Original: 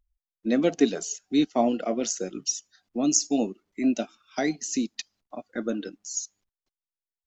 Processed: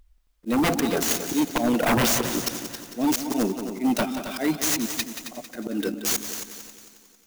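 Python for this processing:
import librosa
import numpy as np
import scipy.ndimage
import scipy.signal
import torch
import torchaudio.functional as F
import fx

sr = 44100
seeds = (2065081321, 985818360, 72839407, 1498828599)

y = fx.dynamic_eq(x, sr, hz=5100.0, q=2.0, threshold_db=-42.0, ratio=4.0, max_db=-5)
y = fx.auto_swell(y, sr, attack_ms=408.0)
y = fx.fold_sine(y, sr, drive_db=15, ceiling_db=-16.0)
y = fx.echo_heads(y, sr, ms=90, heads='second and third', feedback_pct=47, wet_db=-10.5)
y = fx.clock_jitter(y, sr, seeds[0], jitter_ms=0.028)
y = F.gain(torch.from_numpy(y), -1.5).numpy()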